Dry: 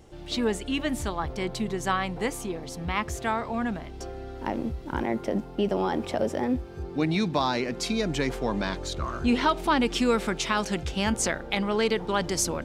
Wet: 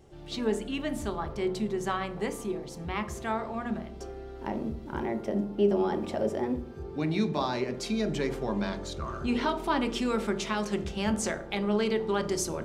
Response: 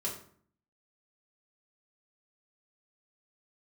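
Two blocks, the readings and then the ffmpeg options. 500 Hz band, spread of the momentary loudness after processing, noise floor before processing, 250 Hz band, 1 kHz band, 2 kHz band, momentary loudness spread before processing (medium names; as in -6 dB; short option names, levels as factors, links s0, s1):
-1.0 dB, 8 LU, -41 dBFS, -2.5 dB, -4.5 dB, -6.0 dB, 8 LU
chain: -filter_complex "[0:a]asplit=2[s0][s1];[s1]equalizer=f=340:w=0.3:g=10[s2];[1:a]atrim=start_sample=2205[s3];[s2][s3]afir=irnorm=-1:irlink=0,volume=0.282[s4];[s0][s4]amix=inputs=2:normalize=0,volume=0.398"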